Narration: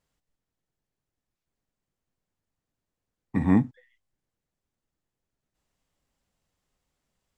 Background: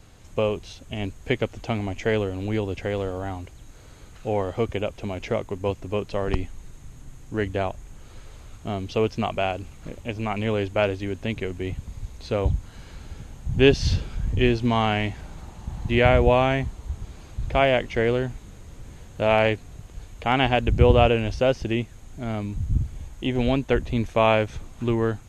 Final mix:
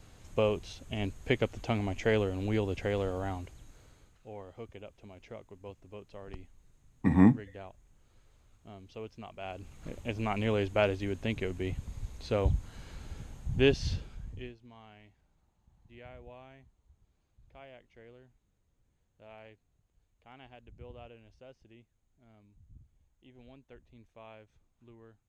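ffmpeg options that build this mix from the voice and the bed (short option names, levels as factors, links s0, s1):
-filter_complex "[0:a]adelay=3700,volume=0.944[s0];[1:a]volume=3.55,afade=t=out:st=3.32:d=0.87:silence=0.158489,afade=t=in:st=9.38:d=0.56:silence=0.16788,afade=t=out:st=13.21:d=1.34:silence=0.0421697[s1];[s0][s1]amix=inputs=2:normalize=0"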